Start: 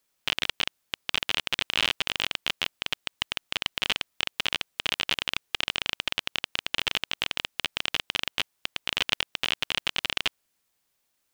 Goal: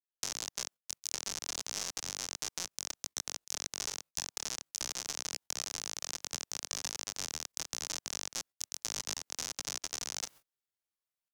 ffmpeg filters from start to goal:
-filter_complex "[0:a]areverse,acompressor=mode=upward:threshold=0.0178:ratio=2.5,areverse,agate=range=0.0126:threshold=0.00708:ratio=16:detection=peak,asetrate=88200,aresample=44100,atempo=0.5,acrossover=split=160|1200[s0][s1][s2];[s0]acompressor=threshold=0.00126:ratio=4[s3];[s1]acompressor=threshold=0.00447:ratio=4[s4];[s2]acompressor=threshold=0.02:ratio=4[s5];[s3][s4][s5]amix=inputs=3:normalize=0"

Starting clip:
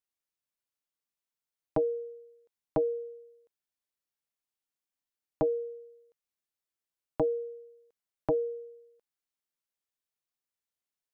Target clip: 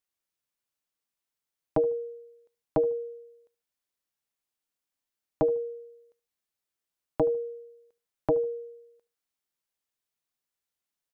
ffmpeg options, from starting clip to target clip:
-filter_complex "[0:a]asplit=2[s0][s1];[s1]adelay=74,lowpass=f=1500:p=1,volume=0.1,asplit=2[s2][s3];[s3]adelay=74,lowpass=f=1500:p=1,volume=0.3[s4];[s0][s2][s4]amix=inputs=3:normalize=0,volume=1.41"

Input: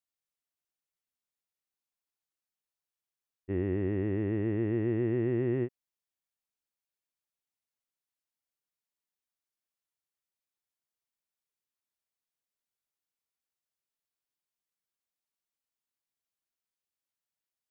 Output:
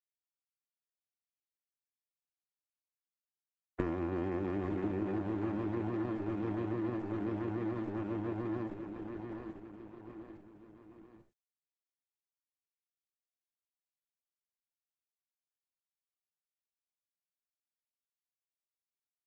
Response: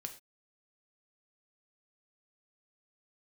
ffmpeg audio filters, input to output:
-filter_complex "[0:a]equalizer=f=220:t=o:w=2.7:g=10,asetrate=40517,aresample=44100,acrusher=bits=7:mix=0:aa=0.5,acontrast=64,acrossover=split=470 2600:gain=0.178 1 0.141[s0][s1][s2];[s0][s1][s2]amix=inputs=3:normalize=0,aeval=exprs='(tanh(28.2*val(0)+0.65)-tanh(0.65))/28.2':c=same,asplit=2[s3][s4];[1:a]atrim=start_sample=2205,atrim=end_sample=3969,asetrate=33516,aresample=44100[s5];[s4][s5]afir=irnorm=-1:irlink=0,volume=2[s6];[s3][s6]amix=inputs=2:normalize=0,aresample=22050,aresample=44100,aecho=1:1:838|1676|2514|3352|4190|5028:0.531|0.25|0.117|0.0551|0.0259|0.0122,acompressor=threshold=0.0158:ratio=20,volume=2.11" -ar 48000 -c:a libopus -b:a 10k

